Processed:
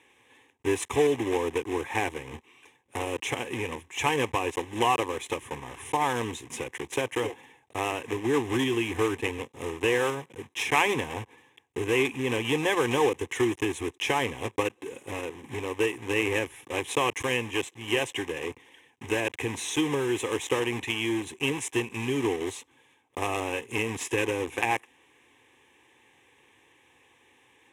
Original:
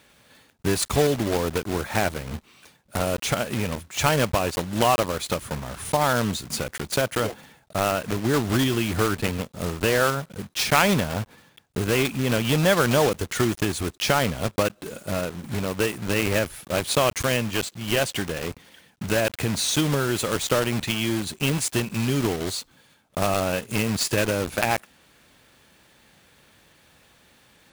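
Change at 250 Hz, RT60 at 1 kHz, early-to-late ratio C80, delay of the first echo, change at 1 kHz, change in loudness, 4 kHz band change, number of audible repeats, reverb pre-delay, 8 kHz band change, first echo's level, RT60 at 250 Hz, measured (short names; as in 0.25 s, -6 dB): -5.0 dB, none, none, none, -3.5 dB, -4.5 dB, -6.0 dB, none, none, -8.0 dB, none, none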